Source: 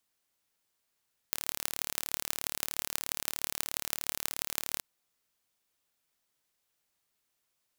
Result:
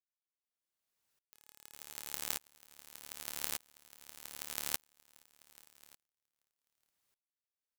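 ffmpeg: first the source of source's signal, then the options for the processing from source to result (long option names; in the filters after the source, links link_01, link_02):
-f lavfi -i "aevalsrc='0.794*eq(mod(n,1195),0)*(0.5+0.5*eq(mod(n,7170),0))':duration=3.47:sample_rate=44100"
-filter_complex "[0:a]bandreject=frequency=423.4:width_type=h:width=4,bandreject=frequency=846.8:width_type=h:width=4,bandreject=frequency=1270.2:width_type=h:width=4,bandreject=frequency=1693.6:width_type=h:width=4,bandreject=frequency=2117:width_type=h:width=4,bandreject=frequency=2540.4:width_type=h:width=4,bandreject=frequency=2963.8:width_type=h:width=4,bandreject=frequency=3387.2:width_type=h:width=4,bandreject=frequency=3810.6:width_type=h:width=4,bandreject=frequency=4234:width_type=h:width=4,bandreject=frequency=4657.4:width_type=h:width=4,bandreject=frequency=5080.8:width_type=h:width=4,bandreject=frequency=5504.2:width_type=h:width=4,bandreject=frequency=5927.6:width_type=h:width=4,bandreject=frequency=6351:width_type=h:width=4,bandreject=frequency=6774.4:width_type=h:width=4,bandreject=frequency=7197.8:width_type=h:width=4,bandreject=frequency=7621.2:width_type=h:width=4,bandreject=frequency=8044.6:width_type=h:width=4,bandreject=frequency=8468:width_type=h:width=4,bandreject=frequency=8891.4:width_type=h:width=4,bandreject=frequency=9314.8:width_type=h:width=4,bandreject=frequency=9738.2:width_type=h:width=4,bandreject=frequency=10161.6:width_type=h:width=4,bandreject=frequency=10585:width_type=h:width=4,bandreject=frequency=11008.4:width_type=h:width=4,bandreject=frequency=11431.8:width_type=h:width=4,bandreject=frequency=11855.2:width_type=h:width=4,bandreject=frequency=12278.6:width_type=h:width=4,bandreject=frequency=12702:width_type=h:width=4,bandreject=frequency=13125.4:width_type=h:width=4,bandreject=frequency=13548.8:width_type=h:width=4,bandreject=frequency=13972.2:width_type=h:width=4,bandreject=frequency=14395.6:width_type=h:width=4,bandreject=frequency=14819:width_type=h:width=4,bandreject=frequency=15242.4:width_type=h:width=4,asplit=2[link_01][link_02];[link_02]aecho=0:1:418|836|1254|1672|2090:0.501|0.195|0.0762|0.0297|0.0116[link_03];[link_01][link_03]amix=inputs=2:normalize=0,aeval=exprs='val(0)*pow(10,-34*if(lt(mod(-0.84*n/s,1),2*abs(-0.84)/1000),1-mod(-0.84*n/s,1)/(2*abs(-0.84)/1000),(mod(-0.84*n/s,1)-2*abs(-0.84)/1000)/(1-2*abs(-0.84)/1000))/20)':channel_layout=same"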